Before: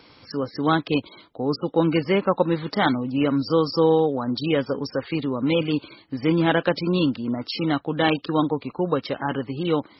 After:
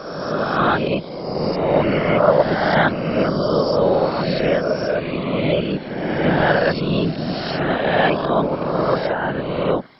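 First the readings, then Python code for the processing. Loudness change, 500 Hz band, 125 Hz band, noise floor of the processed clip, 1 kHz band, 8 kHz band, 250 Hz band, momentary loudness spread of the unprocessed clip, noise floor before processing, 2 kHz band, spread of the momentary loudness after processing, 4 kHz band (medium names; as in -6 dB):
+4.0 dB, +5.5 dB, +4.0 dB, -30 dBFS, +6.0 dB, no reading, +0.5 dB, 8 LU, -53 dBFS, +7.5 dB, 7 LU, +2.0 dB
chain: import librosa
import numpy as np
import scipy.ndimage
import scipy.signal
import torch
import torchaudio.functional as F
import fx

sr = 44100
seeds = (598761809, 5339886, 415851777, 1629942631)

y = fx.spec_swells(x, sr, rise_s=1.81)
y = fx.whisperise(y, sr, seeds[0])
y = fx.graphic_eq_15(y, sr, hz=(160, 630, 1600), db=(10, 10, 8))
y = y * librosa.db_to_amplitude(-5.0)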